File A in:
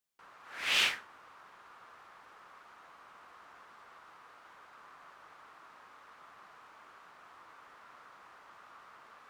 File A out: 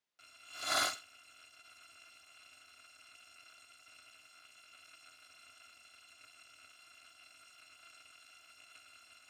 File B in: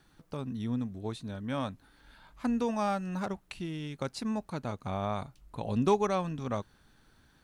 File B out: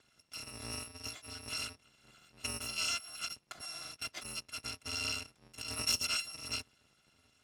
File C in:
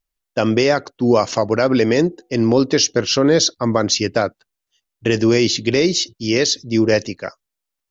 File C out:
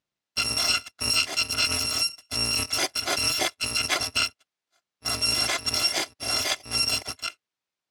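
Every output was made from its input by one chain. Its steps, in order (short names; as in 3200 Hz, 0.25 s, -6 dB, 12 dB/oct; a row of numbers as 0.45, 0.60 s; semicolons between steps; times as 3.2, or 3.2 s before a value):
FFT order left unsorted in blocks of 256 samples; in parallel at +1.5 dB: limiter -15 dBFS; on the sum: BPF 120–5300 Hz; gain -5 dB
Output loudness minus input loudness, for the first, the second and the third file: -4.5, -4.0, -7.0 LU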